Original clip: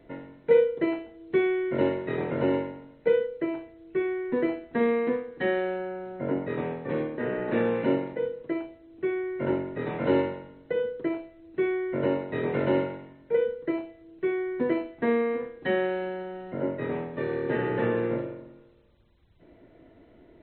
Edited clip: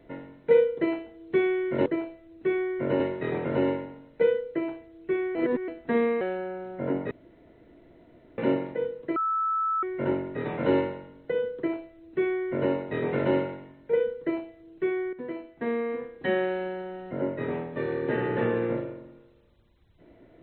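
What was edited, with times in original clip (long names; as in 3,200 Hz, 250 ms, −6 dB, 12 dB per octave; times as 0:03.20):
0:04.21–0:04.54: reverse
0:05.07–0:05.62: remove
0:06.52–0:07.79: fill with room tone
0:08.57–0:09.24: beep over 1,310 Hz −23.5 dBFS
0:10.99–0:12.13: duplicate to 0:01.86
0:14.54–0:15.74: fade in, from −13 dB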